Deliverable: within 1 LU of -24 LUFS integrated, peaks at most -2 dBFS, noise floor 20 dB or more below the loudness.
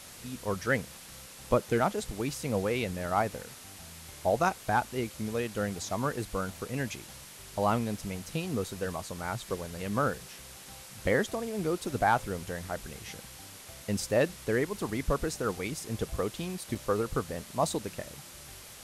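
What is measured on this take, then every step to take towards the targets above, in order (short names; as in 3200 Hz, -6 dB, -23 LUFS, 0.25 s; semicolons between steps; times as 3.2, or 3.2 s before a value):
dropouts 1; longest dropout 4.5 ms; noise floor -49 dBFS; noise floor target -52 dBFS; loudness -32.0 LUFS; peak -13.5 dBFS; loudness target -24.0 LUFS
-> interpolate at 16.75, 4.5 ms; noise print and reduce 6 dB; gain +8 dB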